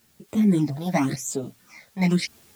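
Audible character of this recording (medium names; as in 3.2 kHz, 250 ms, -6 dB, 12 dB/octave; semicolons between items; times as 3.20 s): phasing stages 8, 0.92 Hz, lowest notch 330–1800 Hz; a quantiser's noise floor 10-bit, dither triangular; random-step tremolo; a shimmering, thickened sound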